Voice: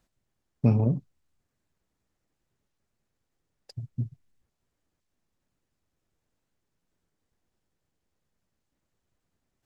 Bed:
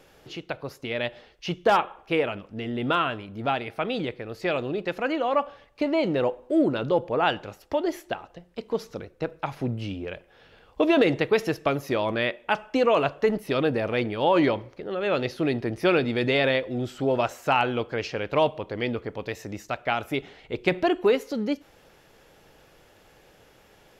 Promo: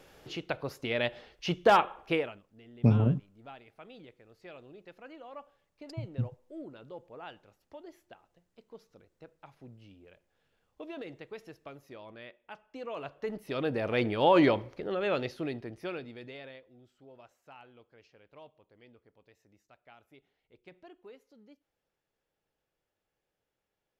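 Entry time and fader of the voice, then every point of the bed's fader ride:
2.20 s, -1.5 dB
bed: 2.1 s -1.5 dB
2.46 s -22.5 dB
12.65 s -22.5 dB
14.07 s -1.5 dB
14.87 s -1.5 dB
16.84 s -30.5 dB

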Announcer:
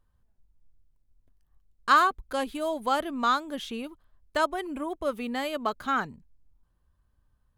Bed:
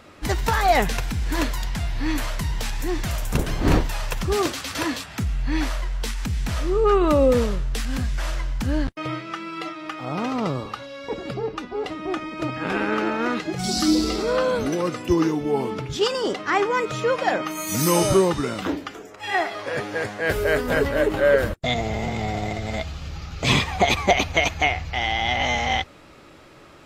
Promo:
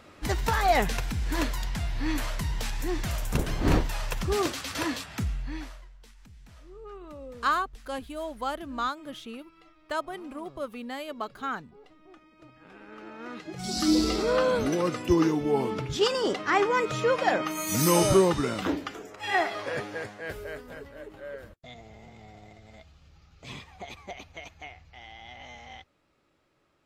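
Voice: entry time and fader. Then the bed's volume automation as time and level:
5.55 s, -5.5 dB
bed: 5.27 s -4.5 dB
5.98 s -26 dB
12.78 s -26 dB
13.97 s -2.5 dB
19.6 s -2.5 dB
20.84 s -23 dB

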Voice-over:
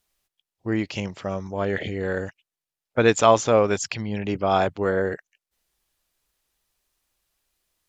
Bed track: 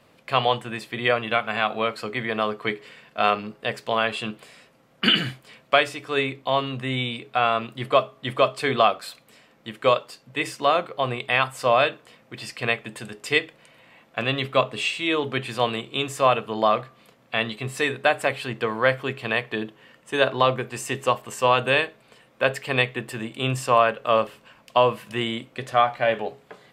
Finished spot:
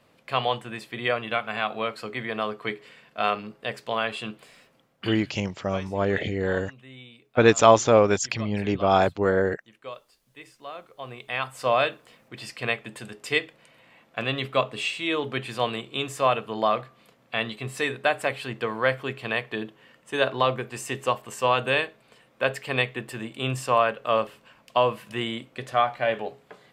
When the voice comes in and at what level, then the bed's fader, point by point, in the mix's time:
4.40 s, +1.0 dB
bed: 4.78 s -4 dB
5.21 s -19.5 dB
10.68 s -19.5 dB
11.68 s -3 dB

